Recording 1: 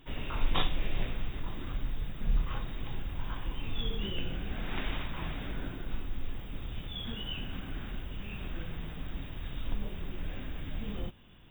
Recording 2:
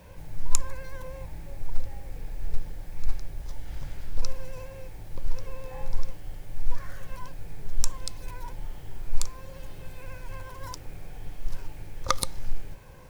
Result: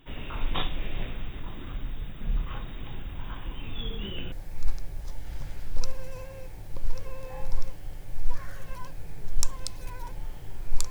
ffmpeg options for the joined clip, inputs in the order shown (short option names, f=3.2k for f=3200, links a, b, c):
-filter_complex "[0:a]apad=whole_dur=10.9,atrim=end=10.9,atrim=end=4.322[a];[1:a]atrim=start=2.728:end=9.31[b];[a][b]acrossfade=d=0.004:c1=hsin:c2=hsin"